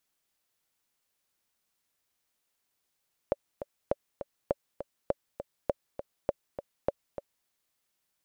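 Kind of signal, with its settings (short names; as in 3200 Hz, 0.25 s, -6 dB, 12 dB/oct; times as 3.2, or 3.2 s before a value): metronome 202 bpm, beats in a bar 2, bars 7, 567 Hz, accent 10.5 dB -12.5 dBFS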